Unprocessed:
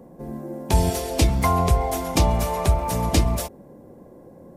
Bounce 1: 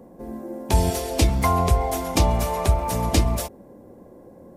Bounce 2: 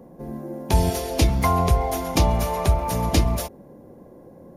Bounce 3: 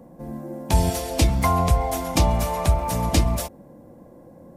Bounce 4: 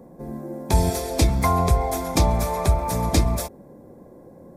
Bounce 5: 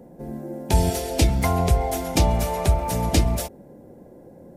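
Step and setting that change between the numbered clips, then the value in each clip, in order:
band-stop, frequency: 150 Hz, 7.9 kHz, 400 Hz, 2.9 kHz, 1.1 kHz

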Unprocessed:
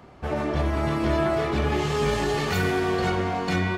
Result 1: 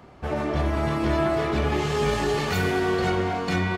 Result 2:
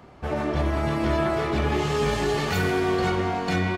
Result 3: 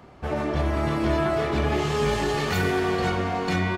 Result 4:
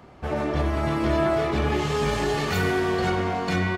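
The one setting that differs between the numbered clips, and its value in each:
speakerphone echo, time: 230 ms, 160 ms, 380 ms, 100 ms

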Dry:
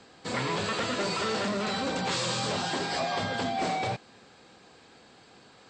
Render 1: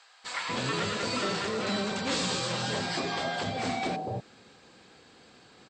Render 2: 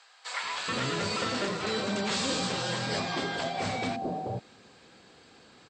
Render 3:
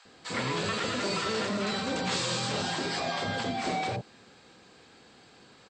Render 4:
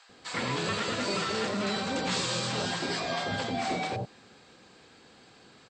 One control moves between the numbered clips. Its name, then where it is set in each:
bands offset in time, time: 240 ms, 430 ms, 50 ms, 90 ms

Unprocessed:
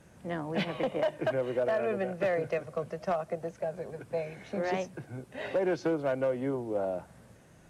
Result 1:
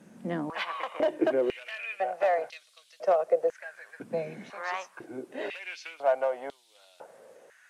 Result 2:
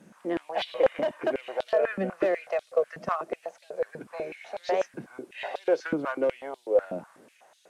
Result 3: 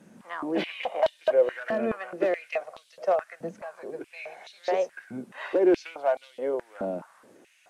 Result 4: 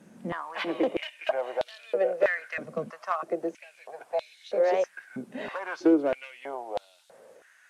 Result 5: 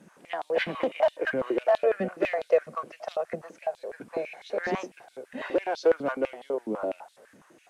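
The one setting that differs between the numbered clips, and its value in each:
step-sequenced high-pass, rate: 2 Hz, 8.1 Hz, 4.7 Hz, 3.1 Hz, 12 Hz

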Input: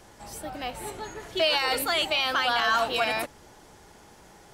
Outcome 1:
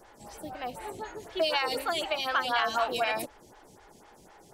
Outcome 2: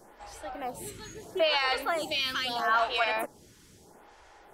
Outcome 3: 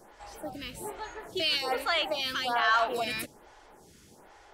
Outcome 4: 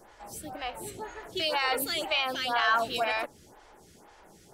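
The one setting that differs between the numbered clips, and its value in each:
lamp-driven phase shifter, rate: 4 Hz, 0.77 Hz, 1.2 Hz, 2 Hz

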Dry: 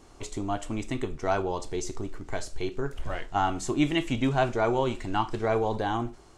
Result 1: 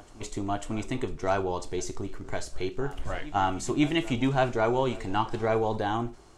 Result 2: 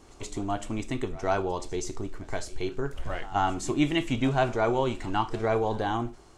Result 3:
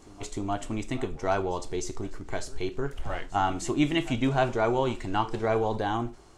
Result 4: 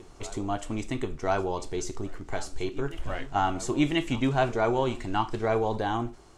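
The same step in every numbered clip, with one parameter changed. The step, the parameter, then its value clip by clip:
reverse echo, time: 546 ms, 126 ms, 304 ms, 1034 ms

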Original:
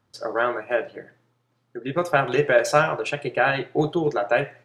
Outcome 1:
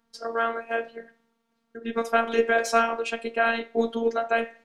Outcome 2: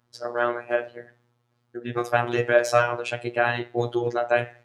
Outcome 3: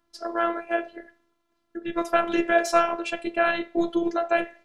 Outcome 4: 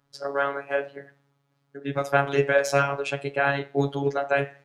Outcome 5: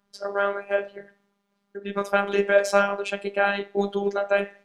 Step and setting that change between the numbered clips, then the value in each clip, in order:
robot voice, frequency: 230 Hz, 120 Hz, 340 Hz, 140 Hz, 200 Hz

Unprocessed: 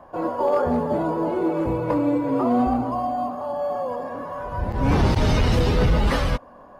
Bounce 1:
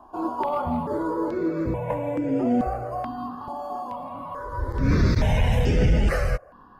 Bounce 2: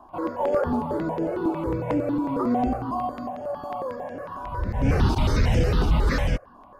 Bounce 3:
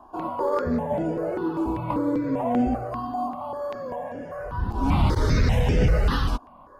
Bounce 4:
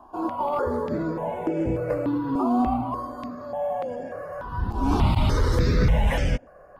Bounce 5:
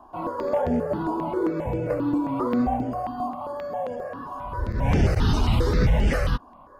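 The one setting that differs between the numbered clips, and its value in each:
stepped phaser, rate: 2.3 Hz, 11 Hz, 5.1 Hz, 3.4 Hz, 7.5 Hz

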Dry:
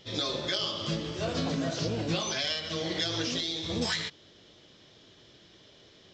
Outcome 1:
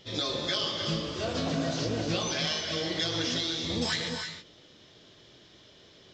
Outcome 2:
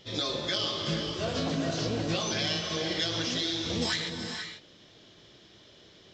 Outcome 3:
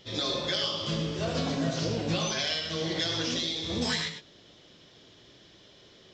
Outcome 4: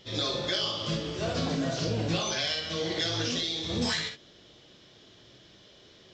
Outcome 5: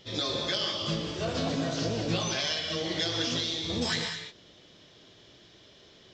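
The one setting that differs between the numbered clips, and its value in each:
gated-style reverb, gate: 350 ms, 520 ms, 130 ms, 80 ms, 240 ms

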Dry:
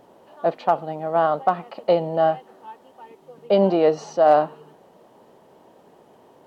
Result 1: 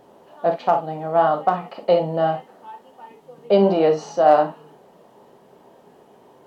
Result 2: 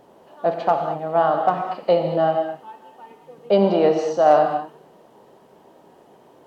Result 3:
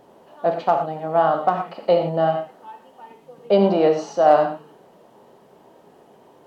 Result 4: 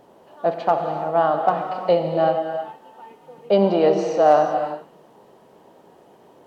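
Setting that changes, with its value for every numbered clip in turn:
gated-style reverb, gate: 80 ms, 250 ms, 140 ms, 410 ms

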